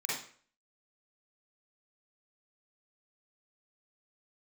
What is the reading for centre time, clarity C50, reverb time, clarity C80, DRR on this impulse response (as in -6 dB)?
57 ms, -1.0 dB, 0.50 s, 6.5 dB, -8.0 dB